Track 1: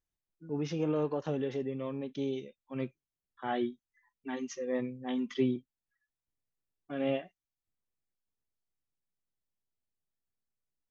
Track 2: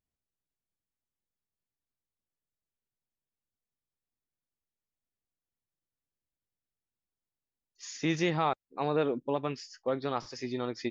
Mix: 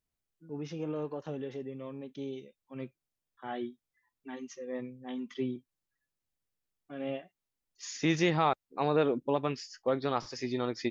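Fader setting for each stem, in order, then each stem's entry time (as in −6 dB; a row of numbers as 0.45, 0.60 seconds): −5.0, +1.5 decibels; 0.00, 0.00 seconds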